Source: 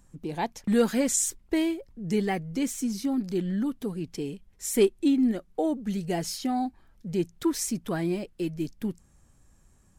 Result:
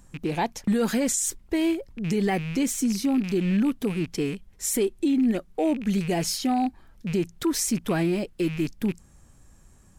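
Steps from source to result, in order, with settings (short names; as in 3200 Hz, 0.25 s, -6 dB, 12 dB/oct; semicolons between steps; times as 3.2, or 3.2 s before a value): rattling part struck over -41 dBFS, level -35 dBFS; limiter -22.5 dBFS, peak gain reduction 10.5 dB; gain +6 dB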